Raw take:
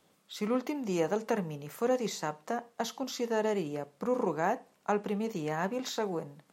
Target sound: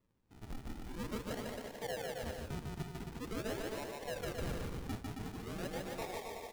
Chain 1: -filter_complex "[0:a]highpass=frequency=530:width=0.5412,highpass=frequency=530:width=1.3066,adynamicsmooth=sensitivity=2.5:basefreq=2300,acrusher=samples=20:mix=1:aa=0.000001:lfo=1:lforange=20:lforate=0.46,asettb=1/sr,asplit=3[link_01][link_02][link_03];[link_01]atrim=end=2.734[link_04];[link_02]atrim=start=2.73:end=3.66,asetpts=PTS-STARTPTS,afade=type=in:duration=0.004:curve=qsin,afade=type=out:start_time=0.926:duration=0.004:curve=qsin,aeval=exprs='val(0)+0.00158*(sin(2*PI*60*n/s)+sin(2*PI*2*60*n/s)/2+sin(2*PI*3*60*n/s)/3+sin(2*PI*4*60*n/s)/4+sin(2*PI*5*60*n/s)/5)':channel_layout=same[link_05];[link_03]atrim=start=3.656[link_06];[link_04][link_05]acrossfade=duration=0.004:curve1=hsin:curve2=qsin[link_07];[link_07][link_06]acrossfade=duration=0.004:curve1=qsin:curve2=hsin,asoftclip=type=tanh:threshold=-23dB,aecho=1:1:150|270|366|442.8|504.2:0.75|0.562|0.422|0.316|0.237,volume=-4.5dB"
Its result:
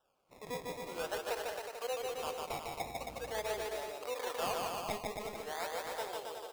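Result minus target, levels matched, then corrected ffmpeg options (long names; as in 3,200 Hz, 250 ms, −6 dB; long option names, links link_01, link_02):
sample-and-hold swept by an LFO: distortion −25 dB; soft clipping: distortion −10 dB
-filter_complex "[0:a]highpass=frequency=530:width=0.5412,highpass=frequency=530:width=1.3066,adynamicsmooth=sensitivity=2.5:basefreq=2300,acrusher=samples=56:mix=1:aa=0.000001:lfo=1:lforange=56:lforate=0.46,asettb=1/sr,asplit=3[link_01][link_02][link_03];[link_01]atrim=end=2.734[link_04];[link_02]atrim=start=2.73:end=3.66,asetpts=PTS-STARTPTS,afade=type=in:duration=0.004:curve=qsin,afade=type=out:start_time=0.926:duration=0.004:curve=qsin,aeval=exprs='val(0)+0.00158*(sin(2*PI*60*n/s)+sin(2*PI*2*60*n/s)/2+sin(2*PI*3*60*n/s)/3+sin(2*PI*4*60*n/s)/4+sin(2*PI*5*60*n/s)/5)':channel_layout=same[link_05];[link_03]atrim=start=3.656[link_06];[link_04][link_05]acrossfade=duration=0.004:curve1=hsin:curve2=qsin[link_07];[link_07][link_06]acrossfade=duration=0.004:curve1=qsin:curve2=hsin,asoftclip=type=tanh:threshold=-31dB,aecho=1:1:150|270|366|442.8|504.2:0.75|0.562|0.422|0.316|0.237,volume=-4.5dB"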